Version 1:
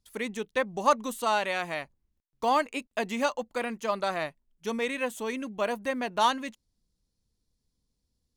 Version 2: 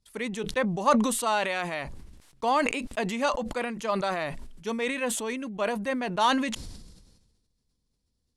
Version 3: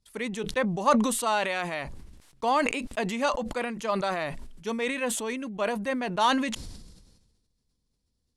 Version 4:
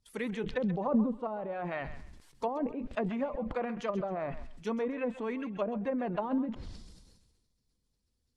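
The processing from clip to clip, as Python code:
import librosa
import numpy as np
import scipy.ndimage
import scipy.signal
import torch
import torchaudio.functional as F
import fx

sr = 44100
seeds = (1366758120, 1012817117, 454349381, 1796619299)

y1 = scipy.signal.sosfilt(scipy.signal.butter(4, 11000.0, 'lowpass', fs=sr, output='sos'), x)
y1 = fx.peak_eq(y1, sr, hz=6500.0, db=-2.5, octaves=0.29)
y1 = fx.sustainer(y1, sr, db_per_s=45.0)
y2 = y1
y3 = fx.spec_quant(y2, sr, step_db=15)
y3 = fx.env_lowpass_down(y3, sr, base_hz=440.0, full_db=-23.5)
y3 = fx.echo_thinned(y3, sr, ms=133, feedback_pct=29, hz=800.0, wet_db=-11.5)
y3 = y3 * 10.0 ** (-2.0 / 20.0)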